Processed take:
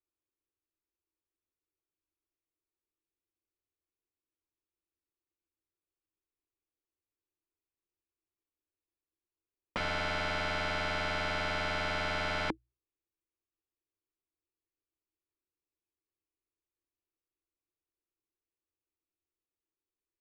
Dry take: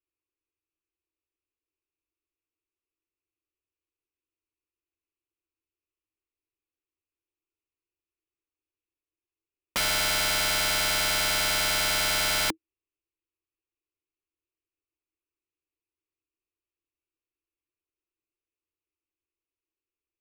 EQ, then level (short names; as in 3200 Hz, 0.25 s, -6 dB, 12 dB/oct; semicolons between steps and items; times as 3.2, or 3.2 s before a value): tape spacing loss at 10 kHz 29 dB; high shelf 4900 Hz -6.5 dB; notches 60/120 Hz; 0.0 dB